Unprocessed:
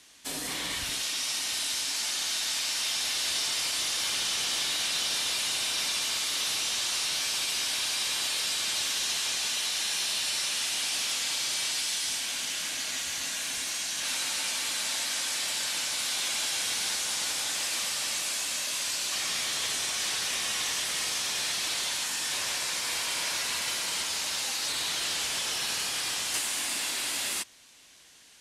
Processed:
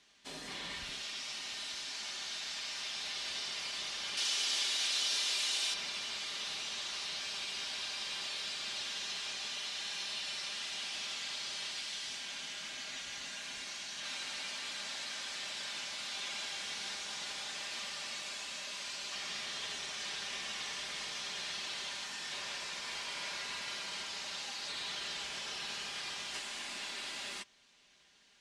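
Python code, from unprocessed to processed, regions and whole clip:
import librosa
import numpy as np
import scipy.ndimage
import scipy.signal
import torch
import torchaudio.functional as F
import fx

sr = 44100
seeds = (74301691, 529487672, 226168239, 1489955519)

y = fx.chain(x, sr, fx.steep_highpass(hz=230.0, slope=48),
    fx.high_shelf(hz=3600.0, db=11.5), at=(4.17, 5.74))
y = scipy.signal.sosfilt(scipy.signal.butter(2, 5000.0, 'lowpass', fs=sr, output='sos'), y)
y = y + 0.43 * np.pad(y, (int(5.0 * sr / 1000.0), 0))[:len(y)]
y = y * 10.0 ** (-8.5 / 20.0)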